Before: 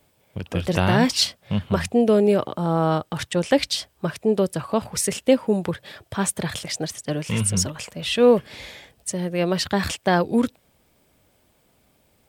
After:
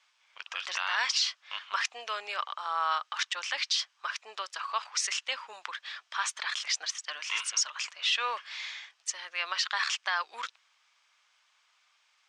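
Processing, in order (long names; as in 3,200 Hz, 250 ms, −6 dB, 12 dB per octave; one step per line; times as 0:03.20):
elliptic band-pass filter 1,100–6,300 Hz, stop band 80 dB
brickwall limiter −19 dBFS, peak gain reduction 10 dB
level +1.5 dB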